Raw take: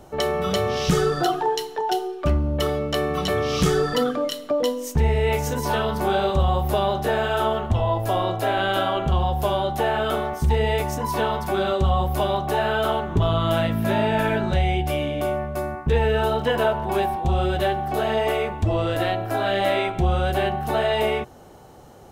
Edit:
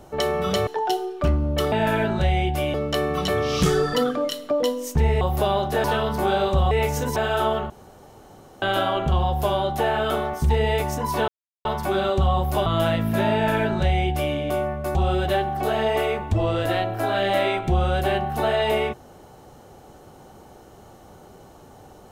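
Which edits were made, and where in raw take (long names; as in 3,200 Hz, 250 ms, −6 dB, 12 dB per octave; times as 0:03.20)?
0:00.67–0:01.69: remove
0:05.21–0:05.66: swap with 0:06.53–0:07.16
0:07.70–0:08.62: fill with room tone
0:11.28: splice in silence 0.37 s
0:12.29–0:13.37: remove
0:14.04–0:15.06: duplicate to 0:02.74
0:15.66–0:17.26: remove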